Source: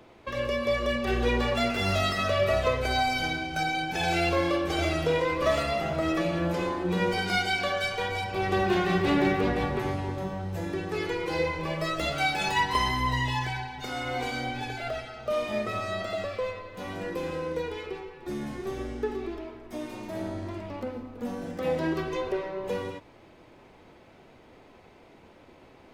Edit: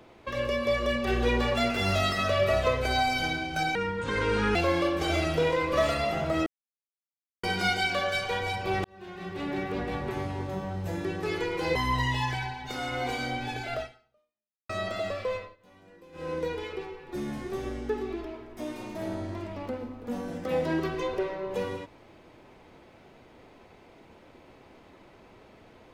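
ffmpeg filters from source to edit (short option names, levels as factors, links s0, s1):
-filter_complex "[0:a]asplit=10[s0][s1][s2][s3][s4][s5][s6][s7][s8][s9];[s0]atrim=end=3.754[s10];[s1]atrim=start=3.75:end=4.24,asetpts=PTS-STARTPTS,asetrate=26901,aresample=44100[s11];[s2]atrim=start=4.236:end=6.15,asetpts=PTS-STARTPTS,afade=t=out:st=1.91:d=0.004:c=hsin[s12];[s3]atrim=start=6.15:end=7.12,asetpts=PTS-STARTPTS,volume=0[s13];[s4]atrim=start=7.12:end=8.53,asetpts=PTS-STARTPTS,afade=t=in:d=0.004:c=hsin,afade=t=out:st=1.406:d=0.004:c=hsin[s14];[s5]atrim=start=8.53:end=11.442,asetpts=PTS-STARTPTS,afade=t=in:d=1.88[s15];[s6]atrim=start=12.888:end=15.83,asetpts=PTS-STARTPTS,afade=t=out:st=2.052:d=0.89:c=exp[s16];[s7]atrim=start=15.83:end=16.7,asetpts=PTS-STARTPTS,afade=t=in:d=0.004:c=hsin,afade=t=out:st=0.68:d=0.19:silence=0.1[s17];[s8]atrim=start=16.7:end=17.26,asetpts=PTS-STARTPTS,volume=0.1[s18];[s9]atrim=start=17.26,asetpts=PTS-STARTPTS,afade=t=in:d=0.19:silence=0.1[s19];[s10][s11]acrossfade=d=0.004:c1=hsin:c2=hsin[s20];[s12][s13][s14][s15]concat=n=4:v=0:a=1[s21];[s20][s21]acrossfade=d=0.004:c1=hsin:c2=hsin[s22];[s16][s17][s18][s19]concat=n=4:v=0:a=1[s23];[s22][s23]acrossfade=d=0.004:c1=hsin:c2=hsin"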